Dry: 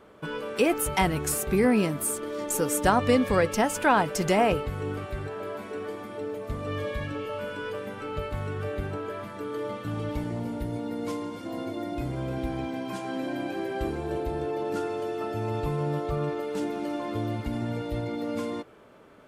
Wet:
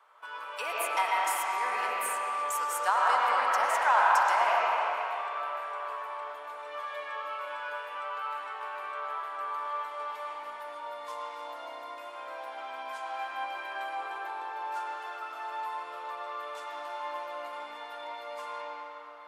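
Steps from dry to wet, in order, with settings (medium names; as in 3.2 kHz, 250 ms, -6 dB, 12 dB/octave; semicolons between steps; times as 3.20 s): ladder high-pass 830 Hz, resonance 50%; reverberation RT60 3.4 s, pre-delay 60 ms, DRR -5.5 dB; trim +1.5 dB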